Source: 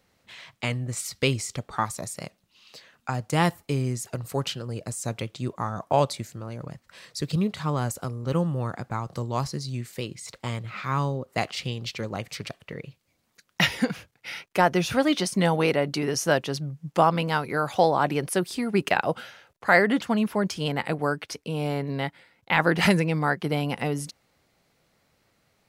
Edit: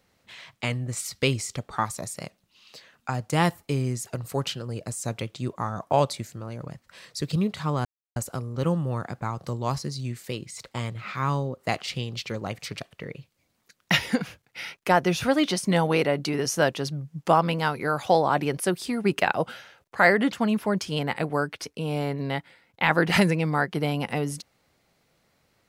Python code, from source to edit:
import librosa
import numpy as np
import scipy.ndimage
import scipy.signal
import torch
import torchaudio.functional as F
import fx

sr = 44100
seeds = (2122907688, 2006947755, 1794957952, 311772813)

y = fx.edit(x, sr, fx.insert_silence(at_s=7.85, length_s=0.31), tone=tone)